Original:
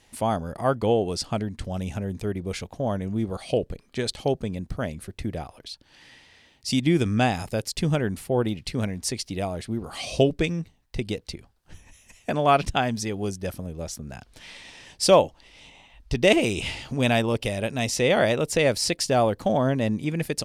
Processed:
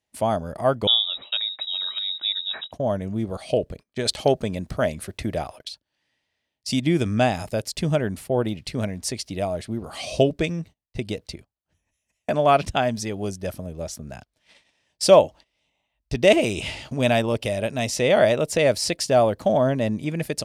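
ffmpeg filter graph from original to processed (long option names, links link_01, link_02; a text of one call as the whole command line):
ffmpeg -i in.wav -filter_complex "[0:a]asettb=1/sr,asplit=3[link_01][link_02][link_03];[link_01]atrim=end=0.874[link_04];[link_02]atrim=start=0.87:end=2.72,asetpts=PTS-STARTPTS,afade=type=in:duration=0.004:curve=qsin,afade=type=out:start_time=1.846:duration=0.004:curve=qsin,aphaser=in_gain=1:out_gain=1:delay=1.2:decay=0.22:speed=1.4:type=triangular,lowpass=frequency=3300:width_type=q:width=0.5098,lowpass=frequency=3300:width_type=q:width=0.6013,lowpass=frequency=3300:width_type=q:width=0.9,lowpass=frequency=3300:width_type=q:width=2.563,afreqshift=-3900[link_05];[link_03]atrim=start=2.716[link_06];[link_04][link_05]acrossfade=duration=0.004:curve1=hsin:curve2=qsin[link_07];[link_07][link_06]acrossfade=duration=0.004:curve1=qsin:curve2=hsin,asettb=1/sr,asplit=3[link_08][link_09][link_10];[link_08]atrim=end=4.054[link_11];[link_09]atrim=start=4.05:end=5.69,asetpts=PTS-STARTPTS,afade=type=in:duration=0.004:curve=qsin,afade=type=out:start_time=1.636:duration=0.004:curve=qsin,lowshelf=frequency=410:gain=-5.5,acontrast=68[link_12];[link_10]atrim=start=5.686[link_13];[link_11][link_12]acrossfade=duration=0.004:curve1=hsin:curve2=qsin[link_14];[link_14][link_13]acrossfade=duration=0.004:curve1=qsin:curve2=hsin,highpass=46,agate=range=-23dB:threshold=-41dB:ratio=16:detection=peak,equalizer=frequency=620:width_type=o:width=0.2:gain=8" out.wav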